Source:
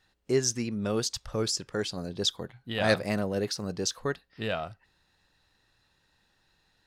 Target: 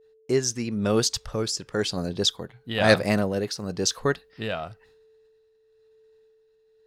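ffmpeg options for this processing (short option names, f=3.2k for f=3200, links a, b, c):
-af "agate=range=-33dB:threshold=-59dB:ratio=3:detection=peak,aeval=exprs='val(0)+0.000794*sin(2*PI*440*n/s)':c=same,tremolo=f=0.99:d=0.5,volume=7dB"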